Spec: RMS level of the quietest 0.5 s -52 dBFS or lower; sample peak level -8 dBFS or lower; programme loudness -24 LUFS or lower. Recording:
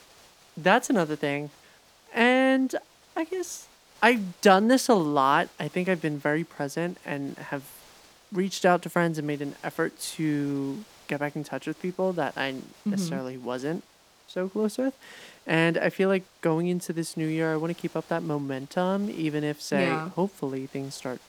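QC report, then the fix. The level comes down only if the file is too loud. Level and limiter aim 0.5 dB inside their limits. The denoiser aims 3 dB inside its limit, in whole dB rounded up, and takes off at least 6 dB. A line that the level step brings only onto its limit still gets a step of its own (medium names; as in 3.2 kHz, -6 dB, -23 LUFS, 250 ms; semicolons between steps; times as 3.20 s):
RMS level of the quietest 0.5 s -57 dBFS: pass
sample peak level -3.5 dBFS: fail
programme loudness -27.0 LUFS: pass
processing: peak limiter -8.5 dBFS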